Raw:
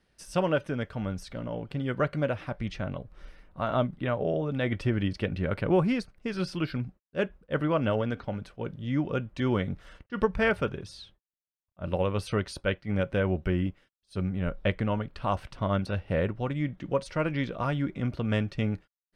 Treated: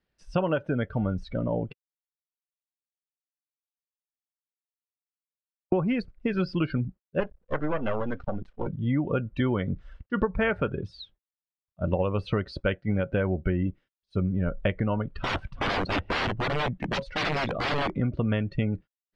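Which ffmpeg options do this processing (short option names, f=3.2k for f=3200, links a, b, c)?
-filter_complex "[0:a]asettb=1/sr,asplit=3[a][b][c];[a]atrim=end=7.204[d];[b]atrim=start=7.2:end=8.67,asetpts=PTS-STARTPTS,afade=t=in:d=0.004:c=qsin,afade=t=out:st=1.466:d=0.004:c=qsin,aeval=exprs='max(val(0),0)':c=same[e];[c]atrim=start=8.666[f];[d][e]acrossfade=d=0.004:c1=hsin:c2=qsin[g];[g][f]acrossfade=d=0.004:c1=qsin:c2=hsin,asplit=3[h][i][j];[h]afade=t=out:st=15.21:d=0.02[k];[i]aeval=exprs='(mod(25.1*val(0)+1,2)-1)/25.1':c=same,afade=t=in:st=15.21:d=0.02,afade=t=out:st=17.89:d=0.02[l];[j]afade=t=in:st=17.89:d=0.02[m];[k][l][m]amix=inputs=3:normalize=0,asplit=3[n][o][p];[n]atrim=end=1.73,asetpts=PTS-STARTPTS,afade=t=out:st=1.726:d=0.004:c=hsin[q];[o]atrim=start=1.73:end=5.72,asetpts=PTS-STARTPTS,volume=0[r];[p]atrim=start=5.72,asetpts=PTS-STARTPTS,afade=t=in:d=0.004:c=hsin[s];[q][r][s]concat=n=3:v=0:a=1,lowpass=5k,afftdn=nr=18:nf=-40,acompressor=threshold=-30dB:ratio=6,volume=8dB"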